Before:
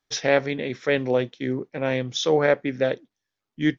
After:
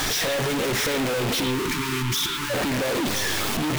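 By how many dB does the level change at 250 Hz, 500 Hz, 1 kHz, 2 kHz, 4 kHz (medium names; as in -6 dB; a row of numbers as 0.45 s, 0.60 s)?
+0.5 dB, -4.5 dB, +3.0 dB, +2.0 dB, +7.5 dB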